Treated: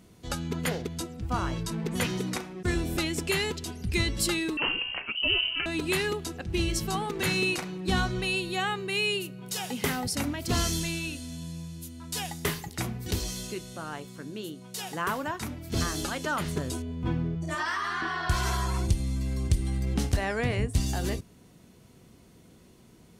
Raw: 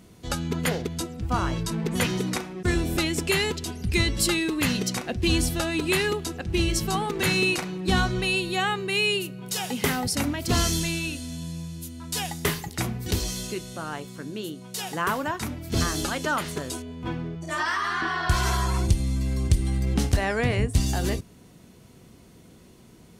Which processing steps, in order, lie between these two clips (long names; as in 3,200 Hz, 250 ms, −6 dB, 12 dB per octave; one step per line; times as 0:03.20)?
0:04.57–0:05.66: voice inversion scrambler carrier 3,000 Hz
0:16.39–0:17.55: low-shelf EQ 250 Hz +10.5 dB
level −4 dB